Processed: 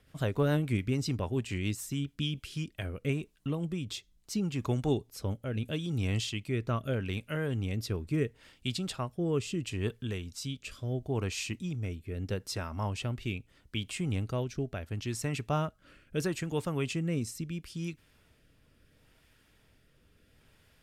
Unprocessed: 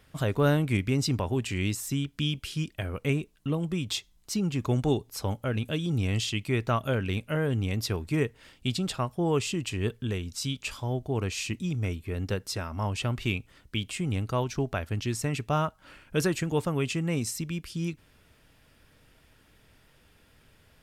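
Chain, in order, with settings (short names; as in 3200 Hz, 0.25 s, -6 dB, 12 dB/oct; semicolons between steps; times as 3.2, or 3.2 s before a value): rotary speaker horn 7 Hz, later 0.75 Hz, at 2.26; gain -2.5 dB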